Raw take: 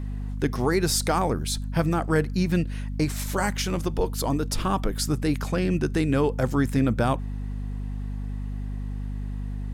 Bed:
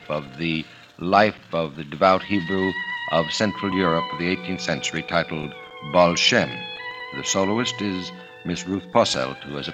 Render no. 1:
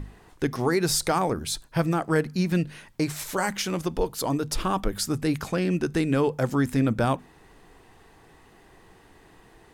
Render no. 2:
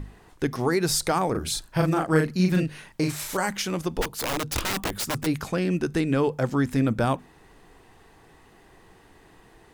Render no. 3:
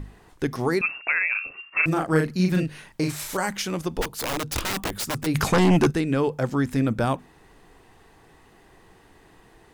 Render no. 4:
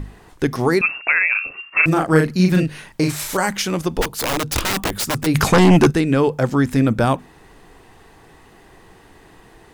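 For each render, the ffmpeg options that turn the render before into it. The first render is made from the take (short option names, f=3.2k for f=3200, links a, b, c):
-af "bandreject=f=50:t=h:w=6,bandreject=f=100:t=h:w=6,bandreject=f=150:t=h:w=6,bandreject=f=200:t=h:w=6,bandreject=f=250:t=h:w=6"
-filter_complex "[0:a]asettb=1/sr,asplit=3[a][b][c];[a]atrim=end=1.314[d];[b]atrim=start=1.31:end=3.37,asetpts=PTS-STARTPTS,afade=t=in:d=0.004:c=qsin,afade=t=out:st=2.056:d=0.004:c=qsin,asplit=2[e][f];[f]adelay=38,volume=-3dB[g];[e][g]amix=inputs=2:normalize=0,atrim=end_sample=90846[h];[c]atrim=start=3.366[i];[d][h]acrossfade=d=0.004:c1=hsin:c2=qsin[j];[j][i]acrossfade=d=0.004:c1=qsin:c2=hsin,asplit=3[k][l][m];[k]afade=t=out:st=4.01:d=0.02[n];[l]aeval=exprs='(mod(11.9*val(0)+1,2)-1)/11.9':c=same,afade=t=in:st=4.01:d=0.02,afade=t=out:st=5.25:d=0.02[o];[m]afade=t=in:st=5.25:d=0.02[p];[n][o][p]amix=inputs=3:normalize=0,asettb=1/sr,asplit=3[q][r][s];[q]atrim=end=6.004[t];[r]atrim=start=6:end=6.71,asetpts=PTS-STARTPTS,afade=t=in:d=0.004:c=qsin,afade=t=out:st=0.706:d=0.004:c=qsin,acrossover=split=6600[u][v];[v]acompressor=threshold=-53dB:ratio=4:attack=1:release=60[w];[u][w]amix=inputs=2:normalize=0[x];[s]atrim=start=6.706[y];[t][x]acrossfade=d=0.004:c1=hsin:c2=qsin[z];[z][y]acrossfade=d=0.004:c1=qsin:c2=hsin"
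-filter_complex "[0:a]asettb=1/sr,asplit=3[a][b][c];[a]atrim=end=0.814[d];[b]atrim=start=0.81:end=1.86,asetpts=PTS-STARTPTS,afade=t=in:d=0.004:c=qsin,afade=t=out:st=1.046:d=0.004:c=qsin,lowpass=f=2.4k:t=q:w=0.5098,lowpass=f=2.4k:t=q:w=0.6013,lowpass=f=2.4k:t=q:w=0.9,lowpass=f=2.4k:t=q:w=2.563,afreqshift=-2800[e];[c]atrim=start=1.856[f];[d][e]acrossfade=d=0.004:c1=hsin:c2=qsin[g];[g][f]acrossfade=d=0.004:c1=qsin:c2=hsin,asplit=3[h][i][j];[h]afade=t=out:st=5.34:d=0.02[k];[i]aeval=exprs='0.224*sin(PI/2*2.51*val(0)/0.224)':c=same,afade=t=in:st=5.34:d=0.02,afade=t=out:st=5.9:d=0.02[l];[j]afade=t=in:st=5.9:d=0.02[m];[k][l][m]amix=inputs=3:normalize=0"
-af "volume=6.5dB"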